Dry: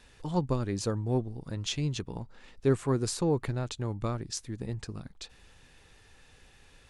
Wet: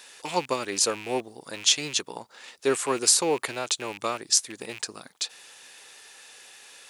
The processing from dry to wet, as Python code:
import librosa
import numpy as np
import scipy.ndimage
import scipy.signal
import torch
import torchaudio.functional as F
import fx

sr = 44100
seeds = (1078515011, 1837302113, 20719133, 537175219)

y = fx.rattle_buzz(x, sr, strikes_db=-35.0, level_db=-38.0)
y = scipy.signal.sosfilt(scipy.signal.butter(2, 510.0, 'highpass', fs=sr, output='sos'), y)
y = fx.high_shelf(y, sr, hz=4200.0, db=11.5)
y = y * librosa.db_to_amplitude(8.0)